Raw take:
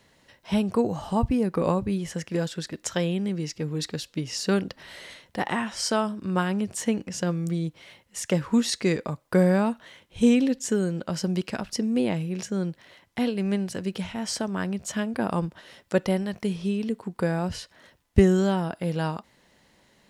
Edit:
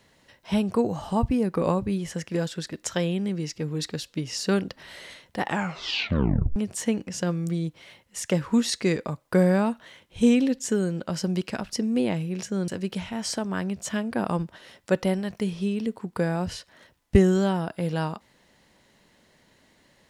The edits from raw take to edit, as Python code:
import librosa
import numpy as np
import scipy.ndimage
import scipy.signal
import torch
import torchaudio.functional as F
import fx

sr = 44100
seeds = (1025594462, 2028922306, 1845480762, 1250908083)

y = fx.edit(x, sr, fx.tape_stop(start_s=5.45, length_s=1.11),
    fx.cut(start_s=12.68, length_s=1.03), tone=tone)